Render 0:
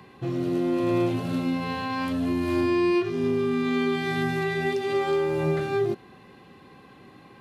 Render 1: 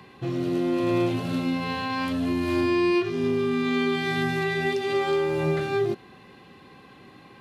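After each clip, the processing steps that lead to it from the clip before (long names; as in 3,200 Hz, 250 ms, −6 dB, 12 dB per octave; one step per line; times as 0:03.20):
parametric band 3,500 Hz +3.5 dB 2.1 octaves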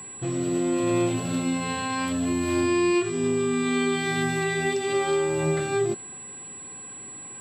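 steady tone 7,800 Hz −38 dBFS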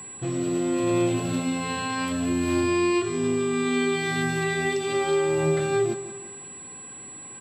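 repeating echo 172 ms, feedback 50%, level −14 dB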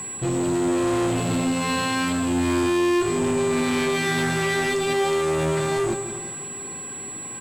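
tube saturation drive 28 dB, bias 0.35
delay that swaps between a low-pass and a high-pass 259 ms, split 1,400 Hz, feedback 56%, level −13 dB
level +8.5 dB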